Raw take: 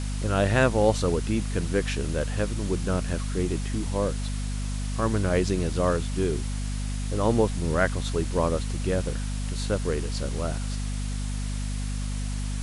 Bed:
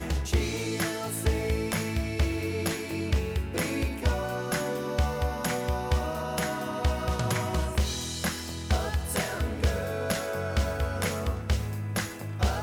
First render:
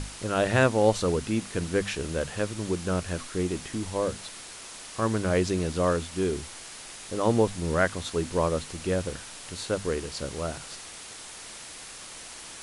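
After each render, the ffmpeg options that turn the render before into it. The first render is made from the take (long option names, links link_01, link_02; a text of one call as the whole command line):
ffmpeg -i in.wav -af "bandreject=frequency=50:width_type=h:width=6,bandreject=frequency=100:width_type=h:width=6,bandreject=frequency=150:width_type=h:width=6,bandreject=frequency=200:width_type=h:width=6,bandreject=frequency=250:width_type=h:width=6" out.wav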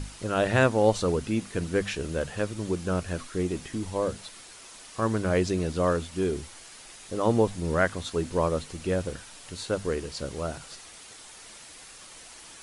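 ffmpeg -i in.wav -af "afftdn=noise_reduction=6:noise_floor=-43" out.wav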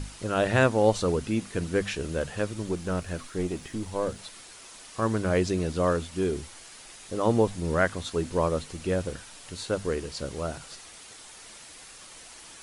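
ffmpeg -i in.wav -filter_complex "[0:a]asettb=1/sr,asplit=3[link_01][link_02][link_03];[link_01]atrim=end=2.624[link_04];[link_02]atrim=start=2.62:end=4.19,asetpts=PTS-STARTPTS,afade=type=in:duration=0.004:curve=qsin,afade=type=out:start_time=1.566:duration=0.004:curve=qsin,aeval=exprs='if(lt(val(0),0),0.708*val(0),val(0))':channel_layout=same[link_05];[link_03]atrim=start=4.186[link_06];[link_04][link_05]acrossfade=duration=0.004:curve1=hsin:curve2=qsin[link_07];[link_07][link_06]acrossfade=duration=0.004:curve1=qsin:curve2=hsin" out.wav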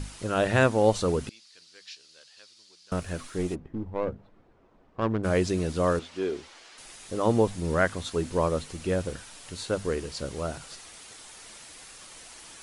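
ffmpeg -i in.wav -filter_complex "[0:a]asettb=1/sr,asplit=3[link_01][link_02][link_03];[link_01]atrim=end=1.294[link_04];[link_02]atrim=start=1.29:end=2.92,asetpts=PTS-STARTPTS,afade=type=in:duration=0.004:curve=qsin,afade=type=out:start_time=1.626:duration=0.004:curve=qsin,bandpass=frequency=4600:width_type=q:width=4.2[link_05];[link_03]atrim=start=2.916[link_06];[link_04][link_05]acrossfade=duration=0.004:curve1=hsin:curve2=qsin[link_07];[link_07][link_06]acrossfade=duration=0.004:curve1=qsin:curve2=hsin,asplit=3[link_08][link_09][link_10];[link_08]afade=type=out:start_time=3.54:duration=0.02[link_11];[link_09]adynamicsmooth=sensitivity=1:basefreq=590,afade=type=in:start_time=3.54:duration=0.02,afade=type=out:start_time=5.23:duration=0.02[link_12];[link_10]afade=type=in:start_time=5.23:duration=0.02[link_13];[link_11][link_12][link_13]amix=inputs=3:normalize=0,asettb=1/sr,asplit=3[link_14][link_15][link_16];[link_14]atrim=end=5.994[link_17];[link_15]atrim=start=5.99:end=6.78,asetpts=PTS-STARTPTS,afade=type=in:duration=0.004:curve=qsin,afade=type=out:start_time=0.786:duration=0.004:curve=qsin,acrossover=split=270 5900:gain=0.158 1 0.1[link_18][link_19][link_20];[link_18][link_19][link_20]amix=inputs=3:normalize=0[link_21];[link_16]atrim=start=6.776[link_22];[link_17][link_21]acrossfade=duration=0.004:curve1=hsin:curve2=qsin[link_23];[link_23][link_22]acrossfade=duration=0.004:curve1=qsin:curve2=hsin" out.wav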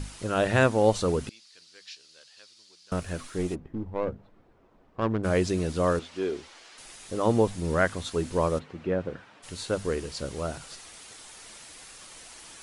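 ffmpeg -i in.wav -filter_complex "[0:a]asplit=3[link_01][link_02][link_03];[link_01]afade=type=out:start_time=8.58:duration=0.02[link_04];[link_02]highpass=120,lowpass=2000,afade=type=in:start_time=8.58:duration=0.02,afade=type=out:start_time=9.42:duration=0.02[link_05];[link_03]afade=type=in:start_time=9.42:duration=0.02[link_06];[link_04][link_05][link_06]amix=inputs=3:normalize=0" out.wav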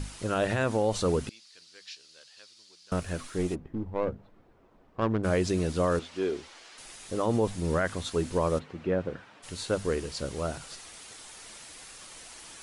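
ffmpeg -i in.wav -af "alimiter=limit=-16.5dB:level=0:latency=1:release=40" out.wav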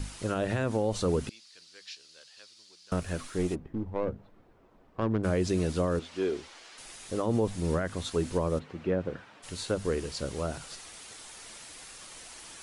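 ffmpeg -i in.wav -filter_complex "[0:a]acrossover=split=470[link_01][link_02];[link_02]acompressor=threshold=-32dB:ratio=4[link_03];[link_01][link_03]amix=inputs=2:normalize=0" out.wav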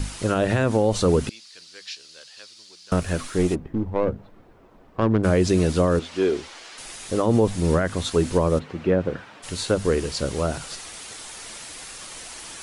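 ffmpeg -i in.wav -af "volume=8.5dB" out.wav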